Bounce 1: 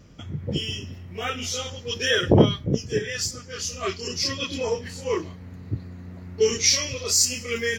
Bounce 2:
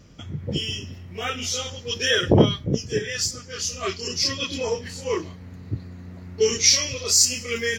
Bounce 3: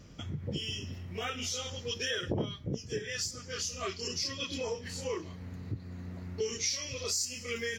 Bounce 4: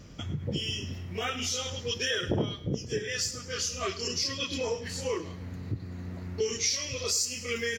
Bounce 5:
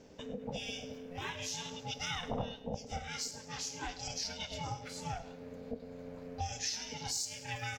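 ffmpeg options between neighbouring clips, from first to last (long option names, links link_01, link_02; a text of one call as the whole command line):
ffmpeg -i in.wav -af "equalizer=frequency=5300:width_type=o:width=1.8:gain=3" out.wav
ffmpeg -i in.wav -af "acompressor=threshold=-32dB:ratio=3,volume=-2.5dB" out.wav
ffmpeg -i in.wav -af "aecho=1:1:103|206|309:0.168|0.0588|0.0206,volume=4dB" out.wav
ffmpeg -i in.wav -af "aeval=exprs='val(0)*sin(2*PI*350*n/s)':channel_layout=same,volume=-5.5dB" out.wav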